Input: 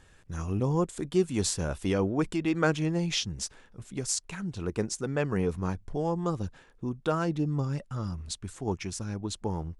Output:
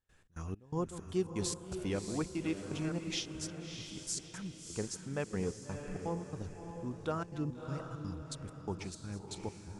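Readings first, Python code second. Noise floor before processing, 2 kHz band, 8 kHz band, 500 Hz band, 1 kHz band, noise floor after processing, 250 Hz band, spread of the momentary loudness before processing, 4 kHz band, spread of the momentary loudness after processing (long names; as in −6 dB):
−58 dBFS, −10.0 dB, −7.5 dB, −9.0 dB, −9.5 dB, −57 dBFS, −8.5 dB, 10 LU, −7.0 dB, 8 LU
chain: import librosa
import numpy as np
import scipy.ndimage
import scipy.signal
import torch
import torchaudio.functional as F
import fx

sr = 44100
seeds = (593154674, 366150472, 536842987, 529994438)

y = fx.reverse_delay(x, sr, ms=146, wet_db=-13.5)
y = fx.step_gate(y, sr, bpm=166, pattern='.xx.xx..xxx', floor_db=-24.0, edge_ms=4.5)
y = fx.echo_diffused(y, sr, ms=641, feedback_pct=41, wet_db=-7.0)
y = F.gain(torch.from_numpy(y), -8.0).numpy()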